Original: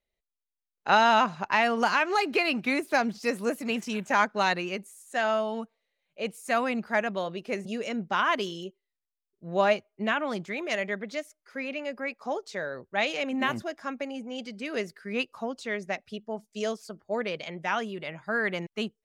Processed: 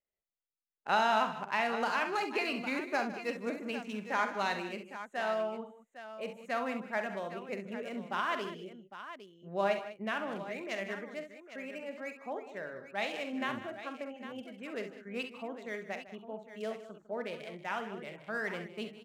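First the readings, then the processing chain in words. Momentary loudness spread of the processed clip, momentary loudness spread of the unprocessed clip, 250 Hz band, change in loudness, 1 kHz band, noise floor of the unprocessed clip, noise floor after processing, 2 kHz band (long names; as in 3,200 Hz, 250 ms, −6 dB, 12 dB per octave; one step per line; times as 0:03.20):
13 LU, 12 LU, −8.0 dB, −7.5 dB, −7.0 dB, below −85 dBFS, −73 dBFS, −7.5 dB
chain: adaptive Wiener filter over 9 samples
low-shelf EQ 75 Hz −9.5 dB
multi-tap delay 46/66/154/196/806 ms −10.5/−10.5/−16/−15/−12 dB
level −8 dB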